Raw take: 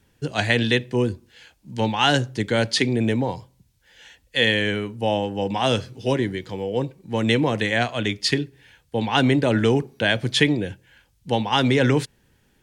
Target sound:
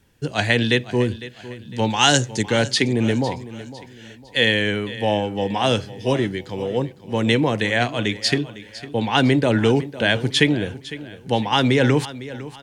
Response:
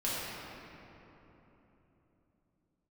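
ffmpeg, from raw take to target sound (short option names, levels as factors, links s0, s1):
-filter_complex "[0:a]asettb=1/sr,asplit=3[s0][s1][s2];[s0]atrim=end=1.904[s3];[s1]atrim=start=1.9:end=2.43,asetpts=PTS-STARTPTS,afade=t=in:d=0.004:c=qsin,afade=t=out:st=0.526:d=0.004:c=qsin,equalizer=f=7000:t=o:w=0.96:g=14.5[s4];[s2]atrim=start=2.426[s5];[s3][s4]acrossfade=d=0.004:c1=hsin:c2=qsin[s6];[s6][s5]acrossfade=d=0.004:c1=qsin:c2=hsin,aecho=1:1:505|1010|1515:0.158|0.0602|0.0229,volume=1.19"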